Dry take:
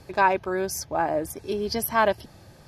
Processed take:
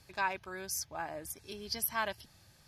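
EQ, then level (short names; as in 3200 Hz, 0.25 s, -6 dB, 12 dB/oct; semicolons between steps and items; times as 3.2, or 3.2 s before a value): passive tone stack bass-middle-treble 5-5-5; +1.5 dB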